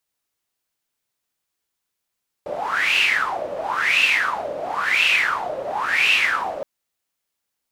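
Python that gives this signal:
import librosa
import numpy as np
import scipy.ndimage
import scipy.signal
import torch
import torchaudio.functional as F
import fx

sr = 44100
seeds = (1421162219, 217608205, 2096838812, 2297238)

y = fx.wind(sr, seeds[0], length_s=4.17, low_hz=560.0, high_hz=2700.0, q=9.1, gusts=4, swing_db=11.0)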